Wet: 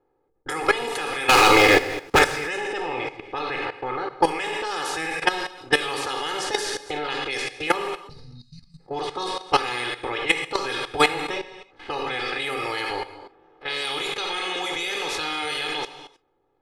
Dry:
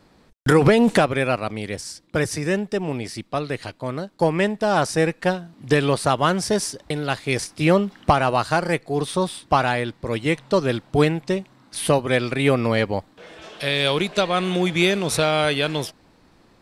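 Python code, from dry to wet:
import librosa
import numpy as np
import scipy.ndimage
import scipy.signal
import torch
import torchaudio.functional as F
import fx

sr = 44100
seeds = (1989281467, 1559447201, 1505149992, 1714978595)

y = fx.spec_clip(x, sr, under_db=17)
y = fx.peak_eq(y, sr, hz=61.0, db=-15.0, octaves=2.4)
y = fx.spec_erase(y, sr, start_s=8.09, length_s=0.7, low_hz=250.0, high_hz=3700.0)
y = fx.echo_wet_highpass(y, sr, ms=452, feedback_pct=67, hz=5200.0, wet_db=-21.0)
y = fx.env_lowpass(y, sr, base_hz=520.0, full_db=-16.5)
y = fx.rider(y, sr, range_db=4, speed_s=0.5)
y = y + 0.84 * np.pad(y, (int(2.4 * sr / 1000.0), 0))[:len(y)]
y = fx.leveller(y, sr, passes=5, at=(1.29, 2.19))
y = fx.air_absorb(y, sr, metres=65.0, at=(11.08, 12.36))
y = fx.rev_gated(y, sr, seeds[0], gate_ms=340, shape='falling', drr_db=3.5)
y = fx.level_steps(y, sr, step_db=14)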